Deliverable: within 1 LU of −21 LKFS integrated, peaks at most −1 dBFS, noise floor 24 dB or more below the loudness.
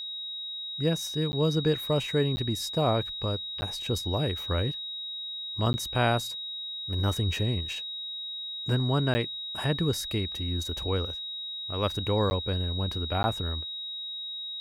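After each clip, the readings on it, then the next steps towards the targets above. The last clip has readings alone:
number of dropouts 7; longest dropout 10 ms; interfering tone 3,800 Hz; level of the tone −34 dBFS; integrated loudness −29.0 LKFS; sample peak −12.5 dBFS; target loudness −21.0 LKFS
→ repair the gap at 0:01.32/0:02.36/0:03.61/0:05.73/0:09.14/0:12.30/0:13.23, 10 ms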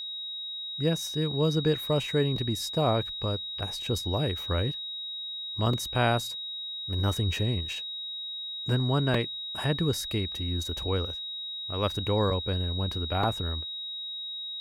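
number of dropouts 0; interfering tone 3,800 Hz; level of the tone −34 dBFS
→ notch filter 3,800 Hz, Q 30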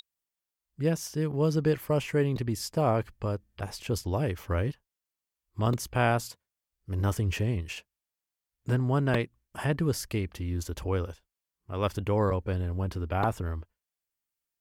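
interfering tone none found; integrated loudness −30.0 LKFS; sample peak −13.0 dBFS; target loudness −21.0 LKFS
→ level +9 dB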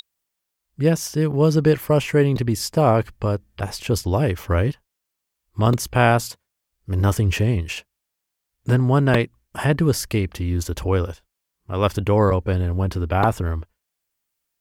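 integrated loudness −21.0 LKFS; sample peak −4.0 dBFS; background noise floor −81 dBFS

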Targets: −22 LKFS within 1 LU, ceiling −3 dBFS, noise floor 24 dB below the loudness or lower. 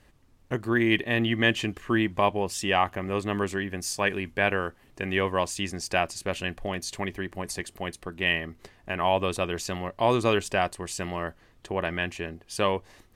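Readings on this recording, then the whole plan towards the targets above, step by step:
integrated loudness −28.0 LKFS; sample peak −8.0 dBFS; target loudness −22.0 LKFS
→ level +6 dB
brickwall limiter −3 dBFS

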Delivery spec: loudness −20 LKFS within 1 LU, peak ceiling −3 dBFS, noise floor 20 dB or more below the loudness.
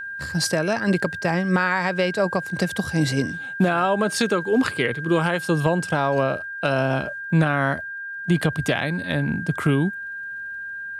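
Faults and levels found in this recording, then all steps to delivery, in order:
crackle rate 40 per second; interfering tone 1,600 Hz; level of the tone −30 dBFS; integrated loudness −23.0 LKFS; sample peak −7.0 dBFS; target loudness −20.0 LKFS
→ click removal
notch filter 1,600 Hz, Q 30
level +3 dB

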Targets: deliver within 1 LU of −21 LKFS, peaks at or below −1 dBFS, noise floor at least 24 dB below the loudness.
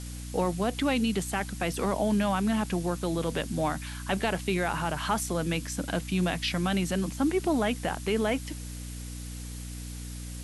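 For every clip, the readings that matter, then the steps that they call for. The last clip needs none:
mains hum 60 Hz; hum harmonics up to 300 Hz; level of the hum −37 dBFS; background noise floor −39 dBFS; target noise floor −54 dBFS; integrated loudness −29.5 LKFS; sample peak −13.5 dBFS; target loudness −21.0 LKFS
→ hum removal 60 Hz, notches 5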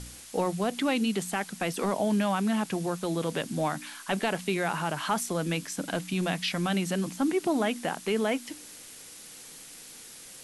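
mains hum none found; background noise floor −47 dBFS; target noise floor −54 dBFS
→ broadband denoise 7 dB, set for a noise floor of −47 dBFS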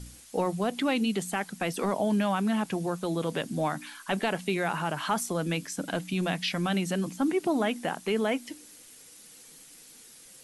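background noise floor −52 dBFS; target noise floor −54 dBFS
→ broadband denoise 6 dB, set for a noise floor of −52 dBFS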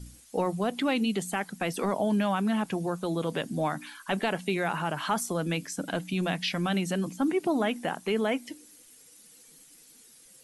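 background noise floor −55 dBFS; integrated loudness −29.5 LKFS; sample peak −13.5 dBFS; target loudness −21.0 LKFS
→ level +8.5 dB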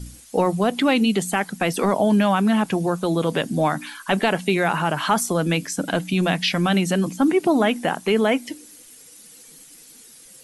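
integrated loudness −21.0 LKFS; sample peak −5.0 dBFS; background noise floor −47 dBFS

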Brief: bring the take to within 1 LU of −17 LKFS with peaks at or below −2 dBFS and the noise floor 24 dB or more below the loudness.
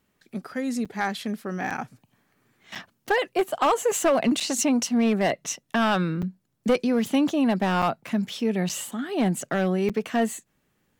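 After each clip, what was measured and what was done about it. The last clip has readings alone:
share of clipped samples 0.9%; peaks flattened at −15.0 dBFS; number of dropouts 8; longest dropout 6.5 ms; integrated loudness −25.0 LKFS; sample peak −15.0 dBFS; target loudness −17.0 LKFS
→ clipped peaks rebuilt −15 dBFS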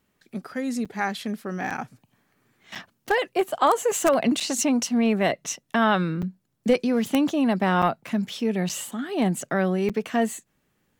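share of clipped samples 0.0%; number of dropouts 8; longest dropout 6.5 ms
→ repair the gap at 0:00.85/0:01.70/0:02.75/0:04.40/0:06.22/0:07.82/0:08.69/0:09.89, 6.5 ms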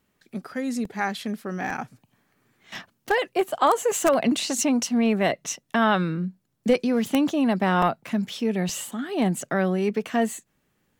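number of dropouts 0; integrated loudness −24.5 LKFS; sample peak −6.0 dBFS; target loudness −17.0 LKFS
→ level +7.5 dB
brickwall limiter −2 dBFS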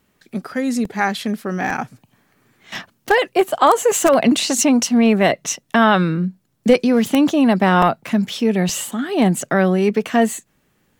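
integrated loudness −17.0 LKFS; sample peak −2.0 dBFS; background noise floor −64 dBFS

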